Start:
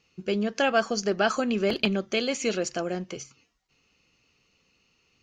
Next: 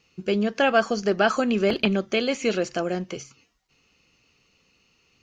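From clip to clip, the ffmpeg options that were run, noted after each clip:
-filter_complex "[0:a]acrossover=split=3500[a][b];[b]acompressor=threshold=-41dB:ratio=4:attack=1:release=60[c];[a][c]amix=inputs=2:normalize=0,volume=3.5dB"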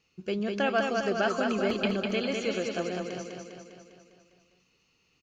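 -af "aecho=1:1:201|402|603|804|1005|1206|1407|1608:0.631|0.372|0.22|0.13|0.0765|0.0451|0.0266|0.0157,volume=-7.5dB"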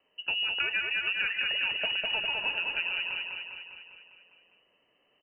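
-af "acompressor=threshold=-29dB:ratio=6,lowpass=f=2.6k:t=q:w=0.5098,lowpass=f=2.6k:t=q:w=0.6013,lowpass=f=2.6k:t=q:w=0.9,lowpass=f=2.6k:t=q:w=2.563,afreqshift=-3100,volume=2.5dB"

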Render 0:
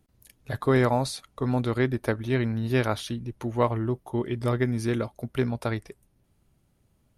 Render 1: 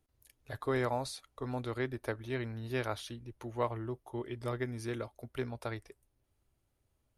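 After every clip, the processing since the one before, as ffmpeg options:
-af "equalizer=f=180:w=2.1:g=-14,volume=-8.5dB"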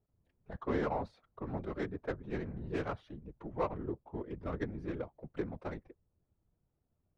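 -af "adynamicsmooth=sensitivity=2:basefreq=1.2k,afftfilt=real='hypot(re,im)*cos(2*PI*random(0))':imag='hypot(re,im)*sin(2*PI*random(1))':win_size=512:overlap=0.75,volume=5dB"

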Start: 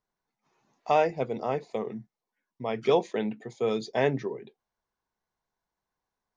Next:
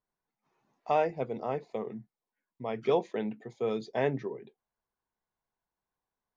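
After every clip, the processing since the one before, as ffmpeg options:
-af "highshelf=f=4.5k:g=-10.5,volume=-3.5dB"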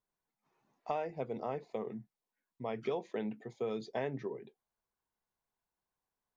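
-af "acompressor=threshold=-30dB:ratio=6,volume=-2dB"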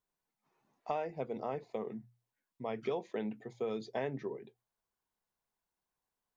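-af "bandreject=f=60:t=h:w=6,bandreject=f=120:t=h:w=6"

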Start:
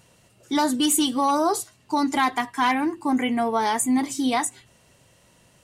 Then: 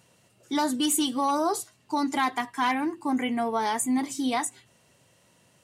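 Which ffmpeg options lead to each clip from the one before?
-af "highpass=98,volume=-4dB"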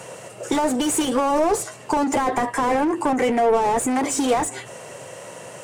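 -filter_complex "[0:a]asplit=2[a][b];[b]highpass=f=720:p=1,volume=27dB,asoftclip=type=tanh:threshold=-14dB[c];[a][c]amix=inputs=2:normalize=0,lowpass=f=2.2k:p=1,volume=-6dB,acrossover=split=270|550[d][e][f];[d]acompressor=threshold=-35dB:ratio=4[g];[e]acompressor=threshold=-33dB:ratio=4[h];[f]acompressor=threshold=-32dB:ratio=4[i];[g][h][i]amix=inputs=3:normalize=0,equalizer=f=125:t=o:w=1:g=7,equalizer=f=250:t=o:w=1:g=-3,equalizer=f=500:t=o:w=1:g=9,equalizer=f=4k:t=o:w=1:g=-7,equalizer=f=8k:t=o:w=1:g=9,volume=5.5dB"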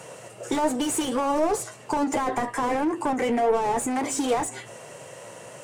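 -af "flanger=delay=6.3:depth=2.8:regen=76:speed=1.4:shape=sinusoidal"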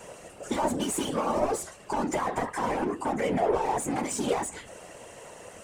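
-af "afftfilt=real='hypot(re,im)*cos(2*PI*random(0))':imag='hypot(re,im)*sin(2*PI*random(1))':win_size=512:overlap=0.75,volume=2.5dB"

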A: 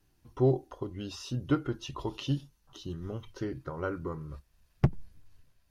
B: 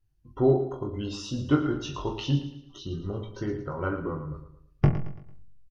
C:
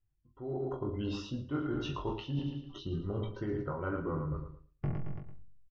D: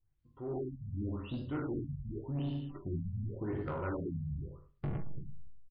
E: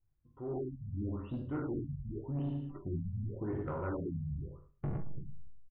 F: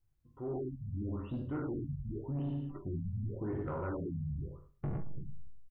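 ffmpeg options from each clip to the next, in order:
-filter_complex "[0:a]asplit=2[a][b];[b]aecho=0:1:20|42|66.2|92.82|122.1:0.631|0.398|0.251|0.158|0.1[c];[a][c]amix=inputs=2:normalize=0,afftdn=nr=19:nf=-54,asplit=2[d][e];[e]aecho=0:1:112|224|336|448:0.282|0.113|0.0451|0.018[f];[d][f]amix=inputs=2:normalize=0,volume=2.5dB"
-af "areverse,acompressor=threshold=-35dB:ratio=10,areverse,lowpass=3.1k,dynaudnorm=f=110:g=9:m=11dB,volume=-7.5dB"
-af "aecho=1:1:55|77:0.376|0.335,asoftclip=type=tanh:threshold=-31.5dB,afftfilt=real='re*lt(b*sr/1024,210*pow(5100/210,0.5+0.5*sin(2*PI*0.88*pts/sr)))':imag='im*lt(b*sr/1024,210*pow(5100/210,0.5+0.5*sin(2*PI*0.88*pts/sr)))':win_size=1024:overlap=0.75,volume=1dB"
-af "lowpass=1.6k"
-af "alimiter=level_in=9dB:limit=-24dB:level=0:latency=1:release=28,volume=-9dB,volume=1.5dB"

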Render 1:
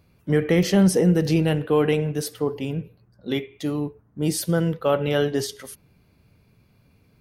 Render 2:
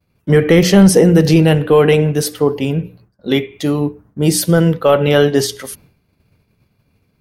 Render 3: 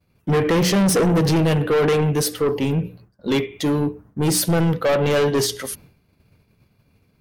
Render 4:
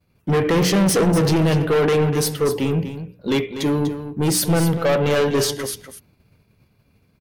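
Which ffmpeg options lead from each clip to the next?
-af "bandreject=f=60:t=h:w=6,bandreject=f=120:t=h:w=6,bandreject=f=180:t=h:w=6,bandreject=f=240:t=h:w=6,bandreject=f=300:t=h:w=6,agate=range=-33dB:threshold=-50dB:ratio=3:detection=peak,apsyclip=12dB,volume=-1.5dB"
-af "asoftclip=type=tanh:threshold=-14.5dB"
-af "aecho=1:1:245:0.299"

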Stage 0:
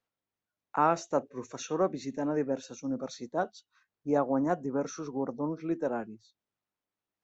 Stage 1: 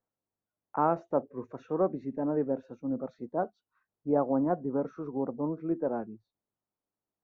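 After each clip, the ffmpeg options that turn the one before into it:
-af "lowpass=1k,volume=1dB"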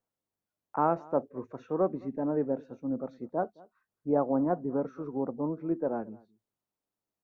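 -filter_complex "[0:a]asplit=2[a][b];[b]adelay=215.7,volume=-24dB,highshelf=f=4k:g=-4.85[c];[a][c]amix=inputs=2:normalize=0"

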